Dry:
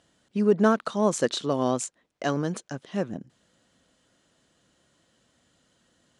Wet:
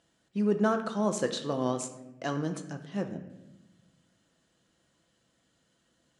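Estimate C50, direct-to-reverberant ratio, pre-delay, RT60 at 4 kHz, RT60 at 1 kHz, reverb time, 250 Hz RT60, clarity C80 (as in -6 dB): 10.0 dB, 5.5 dB, 6 ms, 0.65 s, 0.85 s, 1.0 s, 1.7 s, 12.0 dB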